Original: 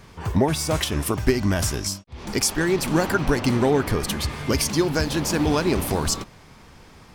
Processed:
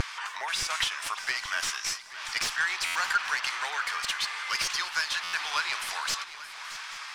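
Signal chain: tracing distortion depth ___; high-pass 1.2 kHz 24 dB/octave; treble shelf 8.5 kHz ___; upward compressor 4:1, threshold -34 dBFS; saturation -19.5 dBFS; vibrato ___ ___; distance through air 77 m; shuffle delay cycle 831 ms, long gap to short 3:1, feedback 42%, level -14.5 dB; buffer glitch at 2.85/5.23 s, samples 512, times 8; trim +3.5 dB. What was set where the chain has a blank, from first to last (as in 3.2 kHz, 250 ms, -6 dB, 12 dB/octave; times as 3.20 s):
0.13 ms, +6.5 dB, 0.64 Hz, 33 cents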